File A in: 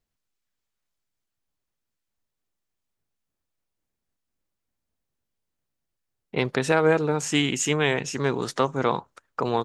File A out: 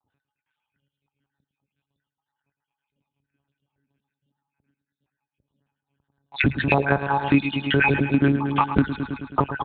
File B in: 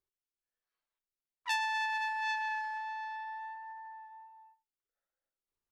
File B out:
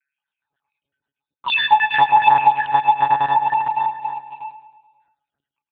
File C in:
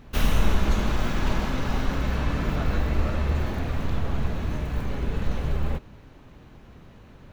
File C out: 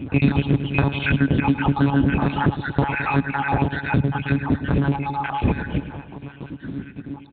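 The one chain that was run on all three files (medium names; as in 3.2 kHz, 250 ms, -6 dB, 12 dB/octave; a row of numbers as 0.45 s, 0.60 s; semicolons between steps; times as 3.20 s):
random holes in the spectrogram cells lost 70%; small resonant body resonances 260/850/1500/2500 Hz, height 15 dB, ringing for 50 ms; in parallel at -9 dB: companded quantiser 4-bit; on the sum: peaking EQ 130 Hz +10.5 dB 0.23 oct; monotone LPC vocoder at 8 kHz 140 Hz; high-pass 79 Hz 12 dB/octave; on a send: feedback delay 107 ms, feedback 59%, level -13 dB; on the sum: compression 4:1, threshold -25 dBFS; peak normalisation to -2 dBFS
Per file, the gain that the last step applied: +8.0 dB, +16.5 dB, +9.5 dB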